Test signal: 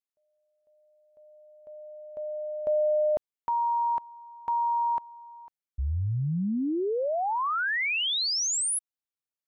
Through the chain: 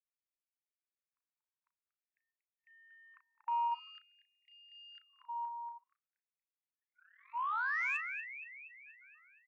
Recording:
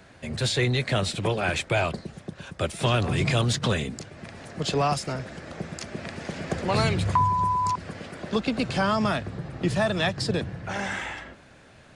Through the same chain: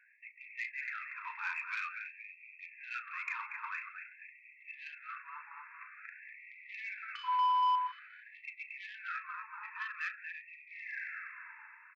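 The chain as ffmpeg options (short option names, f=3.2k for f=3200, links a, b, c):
-filter_complex "[0:a]bandreject=f=50:t=h:w=6,bandreject=f=100:t=h:w=6,bandreject=f=150:t=h:w=6,bandreject=f=200:t=h:w=6,bandreject=f=250:t=h:w=6,bandreject=f=300:t=h:w=6,bandreject=f=350:t=h:w=6,bandreject=f=400:t=h:w=6,bandreject=f=450:t=h:w=6,asplit=2[a][b];[b]adelay=35,volume=-9.5dB[c];[a][c]amix=inputs=2:normalize=0,afftfilt=real='re*between(b*sr/4096,300,2700)':imag='im*between(b*sr/4096,300,2700)':win_size=4096:overlap=0.75,aecho=1:1:236|472|708|944|1180|1416|1652:0.422|0.245|0.142|0.0823|0.0477|0.0277|0.0161,asoftclip=type=tanh:threshold=-17dB,afftfilt=real='re*gte(b*sr/1024,850*pow(1900/850,0.5+0.5*sin(2*PI*0.49*pts/sr)))':imag='im*gte(b*sr/1024,850*pow(1900/850,0.5+0.5*sin(2*PI*0.49*pts/sr)))':win_size=1024:overlap=0.75,volume=-7.5dB"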